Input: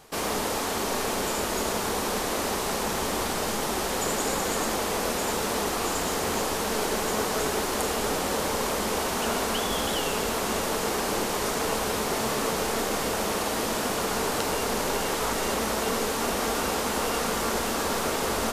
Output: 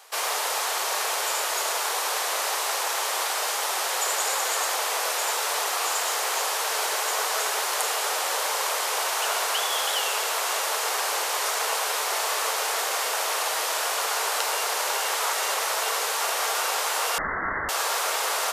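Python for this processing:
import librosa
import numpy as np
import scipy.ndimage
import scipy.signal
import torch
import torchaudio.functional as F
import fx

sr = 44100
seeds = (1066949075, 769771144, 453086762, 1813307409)

y = scipy.signal.sosfilt(scipy.signal.bessel(6, 830.0, 'highpass', norm='mag', fs=sr, output='sos'), x)
y = fx.freq_invert(y, sr, carrier_hz=2500, at=(17.18, 17.69))
y = y * librosa.db_to_amplitude(4.5)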